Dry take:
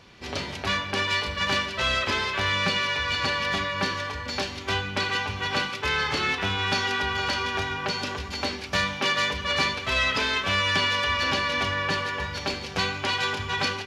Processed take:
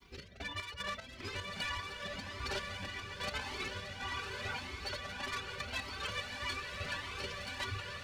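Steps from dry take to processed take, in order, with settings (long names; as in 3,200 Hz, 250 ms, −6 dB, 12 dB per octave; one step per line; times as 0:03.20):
fade-out on the ending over 0.73 s
reverb reduction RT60 0.66 s
hum removal 317.6 Hz, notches 4
in parallel at +2 dB: speech leveller within 5 dB 2 s
on the sum: granular cloud 100 ms, grains 20 per second, pitch spread up and down by 0 semitones
phase-vocoder stretch with locked phases 0.58×
soft clipping −21.5 dBFS, distortion −10 dB
rotating-speaker cabinet horn 1.1 Hz, later 7 Hz, at 0:04.02
bit reduction 11 bits
square-wave tremolo 2.5 Hz, depth 65%, duty 50%
on a send: feedback delay with all-pass diffusion 1,078 ms, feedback 58%, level −3.5 dB
on the sum: flanger whose copies keep moving one way rising 1.7 Hz
level −6.5 dB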